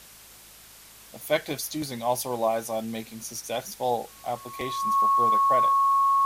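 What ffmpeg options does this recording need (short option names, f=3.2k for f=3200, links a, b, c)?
-af "bandreject=f=53.2:t=h:w=4,bandreject=f=106.4:t=h:w=4,bandreject=f=159.6:t=h:w=4,bandreject=f=212.8:t=h:w=4,bandreject=f=1.1k:w=30,afwtdn=0.004"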